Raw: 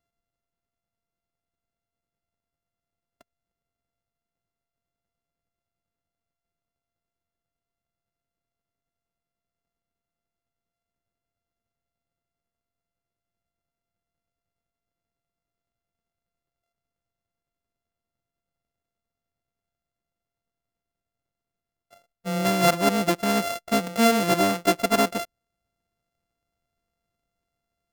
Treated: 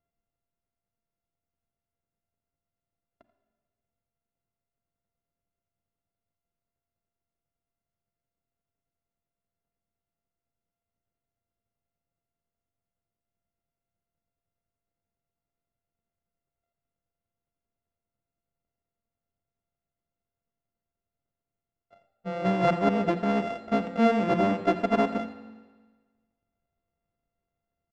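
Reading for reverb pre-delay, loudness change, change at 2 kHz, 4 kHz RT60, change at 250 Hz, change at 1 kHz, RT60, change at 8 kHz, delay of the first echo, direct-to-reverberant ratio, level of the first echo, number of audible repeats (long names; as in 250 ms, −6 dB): 34 ms, −3.0 dB, −6.5 dB, 1.4 s, −1.5 dB, −3.0 dB, 1.4 s, below −20 dB, 86 ms, 9.0 dB, −16.0 dB, 1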